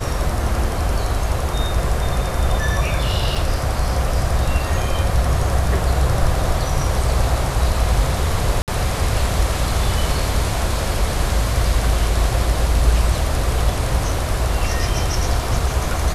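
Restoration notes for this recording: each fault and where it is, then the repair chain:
3.35–3.36 s: dropout 5.1 ms
8.62–8.68 s: dropout 58 ms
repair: interpolate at 3.35 s, 5.1 ms; interpolate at 8.62 s, 58 ms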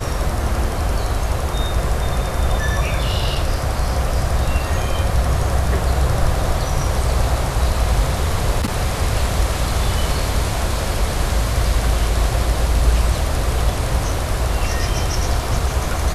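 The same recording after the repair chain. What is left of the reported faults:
nothing left

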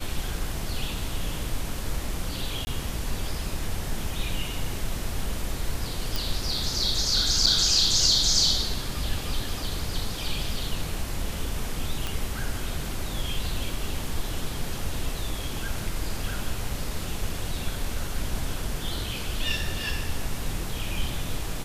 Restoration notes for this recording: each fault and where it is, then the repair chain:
2.65–2.67 s: dropout 20 ms
6.16 s: pop
7.46–7.47 s: dropout 5.9 ms
12.07 s: pop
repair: de-click; interpolate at 2.65 s, 20 ms; interpolate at 7.46 s, 5.9 ms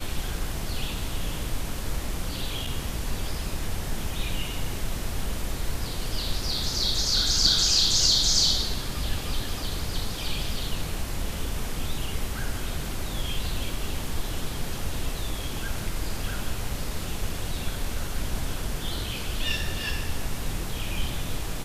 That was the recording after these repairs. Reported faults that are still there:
nothing left

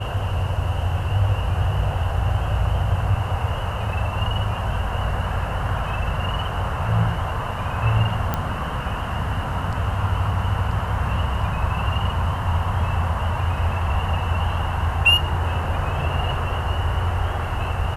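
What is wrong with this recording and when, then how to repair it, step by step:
8.34 s: pop -9 dBFS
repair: de-click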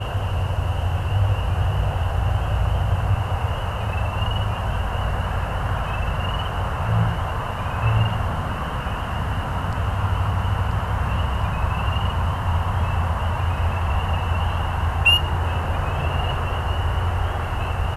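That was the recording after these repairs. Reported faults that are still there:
nothing left

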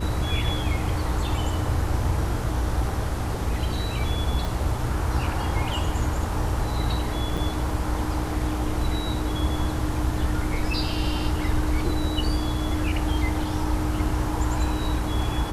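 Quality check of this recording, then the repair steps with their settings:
hum 60 Hz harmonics 8 -29 dBFS
4.45 s: pop
7.37–7.38 s: dropout 6.1 ms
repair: de-click; de-hum 60 Hz, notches 8; interpolate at 7.37 s, 6.1 ms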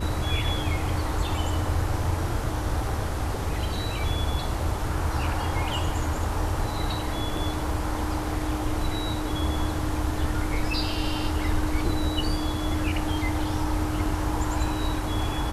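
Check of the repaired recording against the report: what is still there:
4.45 s: pop

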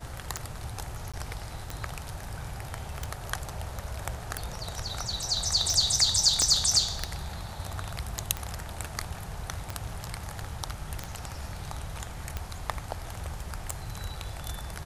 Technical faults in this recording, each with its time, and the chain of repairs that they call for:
tick 45 rpm -17 dBFS
1.12–1.14 s: dropout 16 ms
6.42 s: pop -12 dBFS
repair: de-click; interpolate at 1.12 s, 16 ms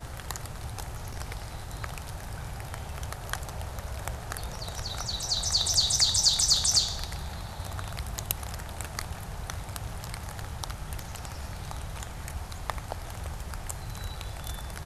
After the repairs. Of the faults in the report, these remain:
6.42 s: pop

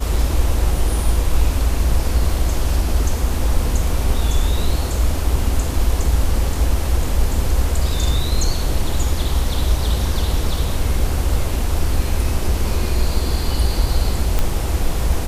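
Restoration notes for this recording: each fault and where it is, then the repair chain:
14.39 s: pop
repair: de-click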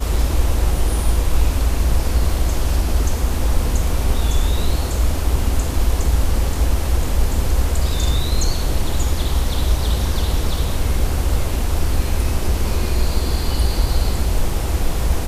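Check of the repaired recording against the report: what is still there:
nothing left

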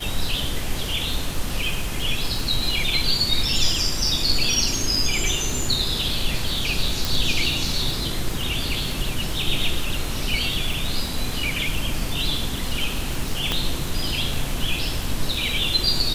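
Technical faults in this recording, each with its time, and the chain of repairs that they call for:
crackle 59 per s -26 dBFS
7.05 s: pop
13.52 s: pop -7 dBFS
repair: de-click

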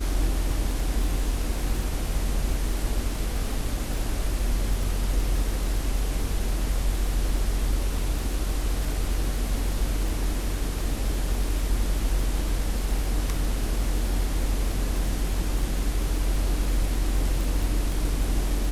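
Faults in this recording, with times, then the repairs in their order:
crackle 34 per s -29 dBFS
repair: de-click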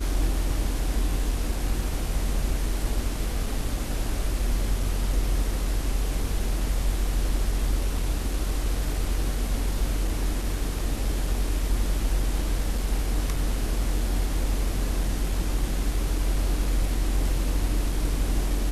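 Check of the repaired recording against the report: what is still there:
nothing left

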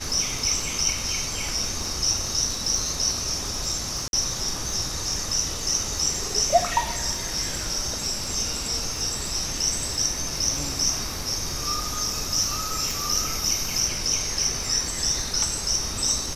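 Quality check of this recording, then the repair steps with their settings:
crackle 33 per s -31 dBFS
4.08–4.13 s: dropout 51 ms
12.91 s: pop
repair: de-click; interpolate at 4.08 s, 51 ms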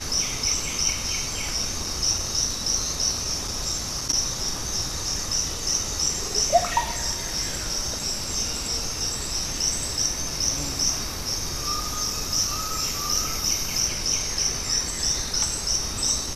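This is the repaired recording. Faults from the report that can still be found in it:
nothing left

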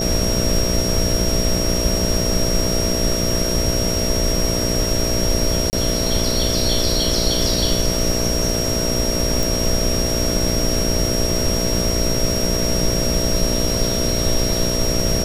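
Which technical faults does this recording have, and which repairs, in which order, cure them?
buzz 60 Hz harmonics 11 -24 dBFS
whine 5.6 kHz -23 dBFS
5.70–5.73 s: dropout 29 ms
9.43 s: pop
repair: de-click; de-hum 60 Hz, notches 11; band-stop 5.6 kHz, Q 30; interpolate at 5.70 s, 29 ms

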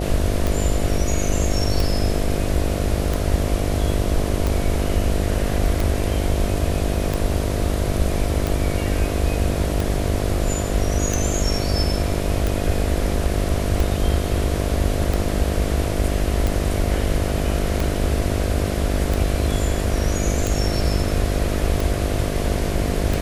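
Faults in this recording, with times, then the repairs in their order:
buzz 50 Hz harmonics 14 -25 dBFS
tick 45 rpm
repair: de-click; de-hum 50 Hz, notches 14

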